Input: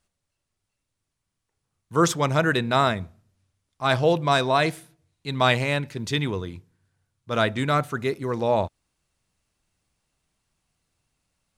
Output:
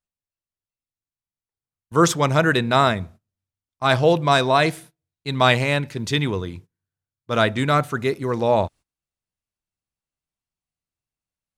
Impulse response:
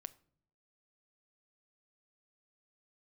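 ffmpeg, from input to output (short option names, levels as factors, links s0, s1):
-af "agate=range=0.0891:threshold=0.00562:ratio=16:detection=peak,volume=1.5"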